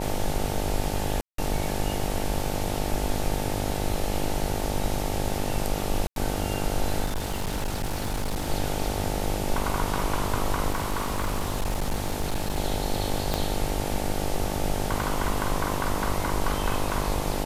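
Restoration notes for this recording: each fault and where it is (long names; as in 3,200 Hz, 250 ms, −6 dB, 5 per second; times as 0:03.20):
mains buzz 50 Hz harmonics 18 −31 dBFS
0:01.21–0:01.38: drop-out 173 ms
0:06.07–0:06.16: drop-out 92 ms
0:07.05–0:08.49: clipping −24 dBFS
0:10.72–0:12.58: clipping −22 dBFS
0:13.34: click −10 dBFS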